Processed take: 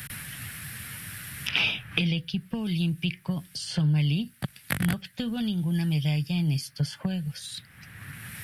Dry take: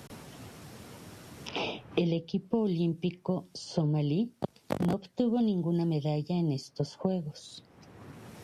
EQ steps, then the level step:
drawn EQ curve 140 Hz 0 dB, 390 Hz −20 dB, 1,000 Hz −11 dB, 1,700 Hz +10 dB, 6,600 Hz −4 dB, 10,000 Hz +12 dB
+8.0 dB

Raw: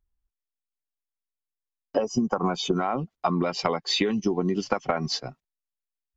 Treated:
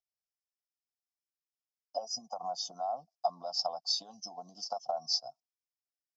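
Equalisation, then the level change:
pair of resonant band-passes 1,900 Hz, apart 2.9 octaves
high-shelf EQ 3,700 Hz +10 dB
phaser with its sweep stopped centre 940 Hz, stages 4
0.0 dB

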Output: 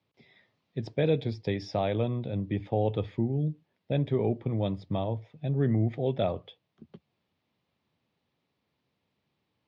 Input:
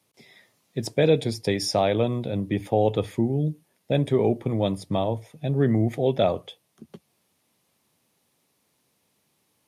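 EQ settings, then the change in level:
low-pass filter 4,200 Hz 24 dB per octave
parametric band 66 Hz +7 dB 2.6 octaves
−7.5 dB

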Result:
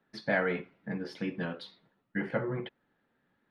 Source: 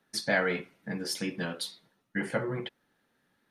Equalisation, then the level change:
high-frequency loss of the air 330 metres
0.0 dB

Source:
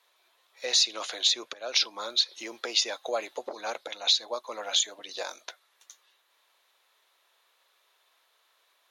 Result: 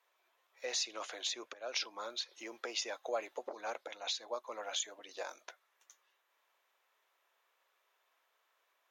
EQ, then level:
graphic EQ with 15 bands 160 Hz −8 dB, 4,000 Hz −10 dB, 10,000 Hz −9 dB
−6.0 dB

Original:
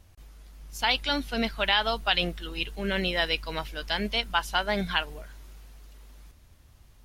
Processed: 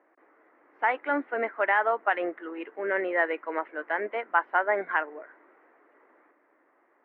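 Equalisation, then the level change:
Chebyshev band-pass filter 300–2,000 Hz, order 4
high-frequency loss of the air 94 metres
+4.5 dB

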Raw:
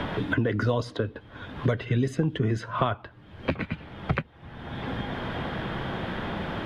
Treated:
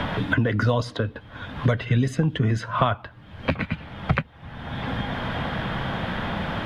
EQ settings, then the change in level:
parametric band 370 Hz −8 dB 0.65 octaves
+5.0 dB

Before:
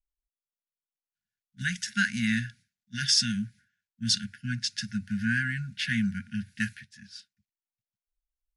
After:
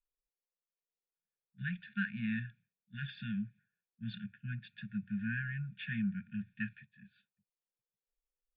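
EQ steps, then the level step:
formant resonators in series e
high-shelf EQ 3,300 Hz +5 dB
phaser with its sweep stopped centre 390 Hz, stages 8
+15.5 dB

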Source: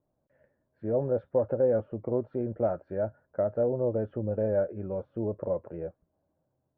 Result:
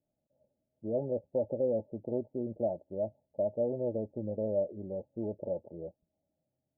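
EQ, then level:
dynamic equaliser 390 Hz, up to +5 dB, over −41 dBFS, Q 1.3
Chebyshev low-pass with heavy ripple 880 Hz, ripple 6 dB
−4.5 dB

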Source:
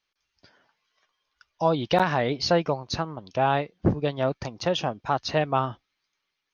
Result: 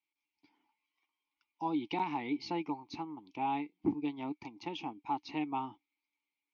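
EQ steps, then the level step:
formant filter u
high-shelf EQ 2,300 Hz +10 dB
0.0 dB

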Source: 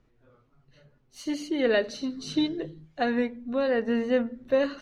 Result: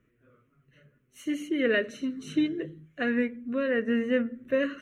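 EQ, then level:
high-pass filter 170 Hz 6 dB per octave
parametric band 3,600 Hz −5 dB 0.28 octaves
phaser with its sweep stopped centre 2,000 Hz, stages 4
+3.0 dB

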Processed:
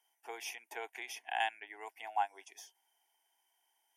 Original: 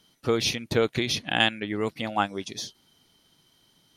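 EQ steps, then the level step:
four-pole ladder high-pass 650 Hz, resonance 50%
high-shelf EQ 7,600 Hz +7 dB
phaser with its sweep stopped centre 830 Hz, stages 8
−2.5 dB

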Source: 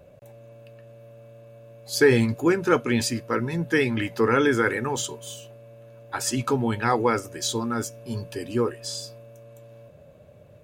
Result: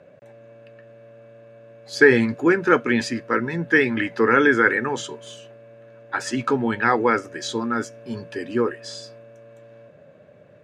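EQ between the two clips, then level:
band-pass filter 210–6,100 Hz
low-shelf EQ 480 Hz +8 dB
parametric band 1,700 Hz +10.5 dB 0.83 octaves
−2.0 dB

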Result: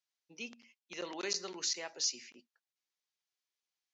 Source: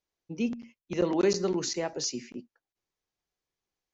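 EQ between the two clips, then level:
resonant band-pass 4,200 Hz, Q 0.64
0.0 dB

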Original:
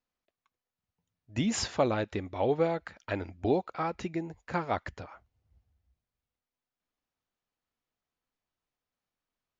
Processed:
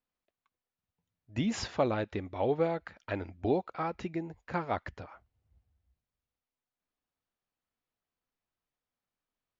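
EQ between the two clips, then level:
high-frequency loss of the air 86 metres
−1.5 dB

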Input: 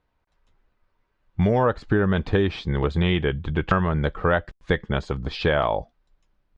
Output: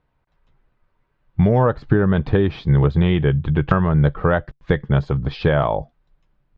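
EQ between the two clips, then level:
high-frequency loss of the air 160 metres
parametric band 140 Hz +9.5 dB 0.35 octaves
dynamic equaliser 2,500 Hz, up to −4 dB, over −39 dBFS, Q 0.93
+3.5 dB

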